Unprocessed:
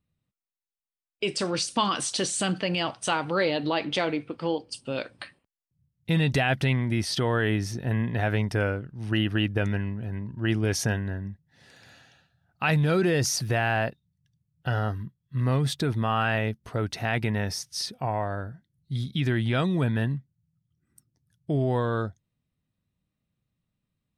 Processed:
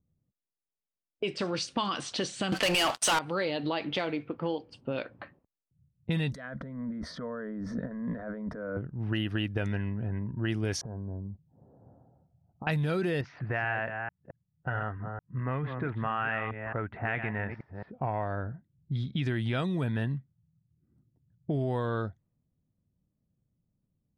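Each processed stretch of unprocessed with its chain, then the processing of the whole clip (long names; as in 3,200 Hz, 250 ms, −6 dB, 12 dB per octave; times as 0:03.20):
0:02.52–0:03.19: meter weighting curve A + leveller curve on the samples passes 5
0:06.32–0:08.77: compressor whose output falls as the input rises −33 dBFS + phaser with its sweep stopped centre 540 Hz, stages 8
0:10.81–0:12.67: Butterworth low-pass 1,100 Hz + downward compressor 10 to 1, threshold −37 dBFS
0:13.21–0:17.93: delay that plays each chunk backwards 220 ms, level −8.5 dB + low-pass filter 2,100 Hz 24 dB per octave + tilt shelving filter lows −7 dB, about 1,100 Hz
whole clip: low-pass that shuts in the quiet parts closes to 580 Hz, open at −20 dBFS; downward compressor 2.5 to 1, threshold −34 dBFS; level +3 dB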